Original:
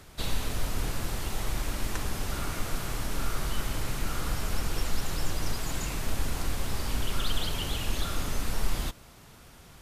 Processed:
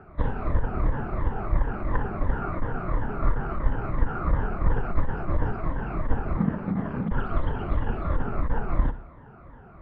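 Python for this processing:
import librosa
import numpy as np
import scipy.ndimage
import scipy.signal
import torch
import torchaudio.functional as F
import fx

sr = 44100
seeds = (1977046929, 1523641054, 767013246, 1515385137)

p1 = fx.spec_ripple(x, sr, per_octave=1.1, drift_hz=-2.9, depth_db=13)
p2 = p1 + fx.echo_feedback(p1, sr, ms=61, feedback_pct=47, wet_db=-14, dry=0)
p3 = fx.cheby_harmonics(p2, sr, harmonics=(2,), levels_db=(-10,), full_scale_db=-11.0)
p4 = scipy.signal.sosfilt(scipy.signal.butter(4, 1500.0, 'lowpass', fs=sr, output='sos'), p3)
p5 = fx.ring_mod(p4, sr, carrier_hz=190.0, at=(6.37, 7.11))
y = p5 * librosa.db_to_amplitude(4.0)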